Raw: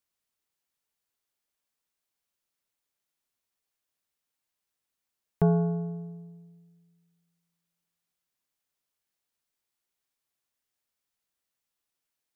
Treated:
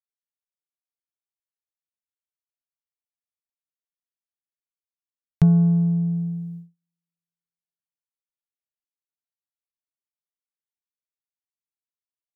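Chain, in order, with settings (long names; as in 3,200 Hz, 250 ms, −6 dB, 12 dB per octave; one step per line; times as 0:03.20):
noise gate −56 dBFS, range −42 dB
downward compressor 2 to 1, threshold −41 dBFS, peak gain reduction 12.5 dB
low shelf with overshoot 210 Hz +10 dB, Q 3
level +5.5 dB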